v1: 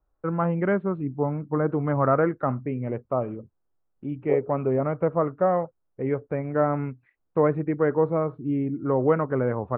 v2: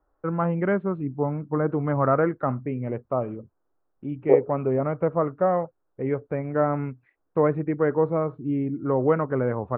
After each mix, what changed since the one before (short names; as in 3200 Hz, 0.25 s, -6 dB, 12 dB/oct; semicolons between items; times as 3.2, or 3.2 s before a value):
second voice +9.0 dB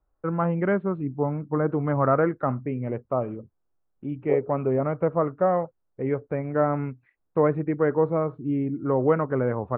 second voice -9.0 dB